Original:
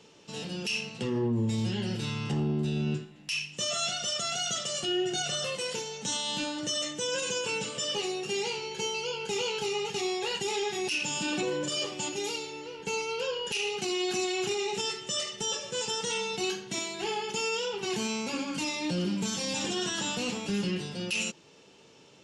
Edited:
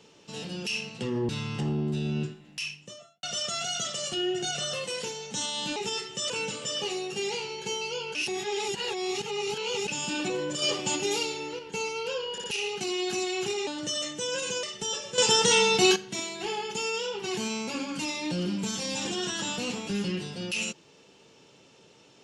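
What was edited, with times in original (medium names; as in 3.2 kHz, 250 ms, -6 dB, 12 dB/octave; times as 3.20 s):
1.29–2.00 s: delete
3.21–3.94 s: studio fade out
6.47–7.43 s: swap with 14.68–15.22 s
9.28–11.01 s: reverse
11.75–12.72 s: gain +5 dB
13.45 s: stutter 0.06 s, 3 plays
15.77–16.55 s: gain +10.5 dB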